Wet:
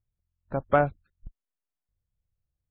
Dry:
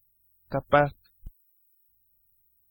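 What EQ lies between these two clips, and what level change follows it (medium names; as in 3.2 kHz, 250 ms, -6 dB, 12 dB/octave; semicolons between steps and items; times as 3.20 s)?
boxcar filter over 9 samples; distance through air 220 m; 0.0 dB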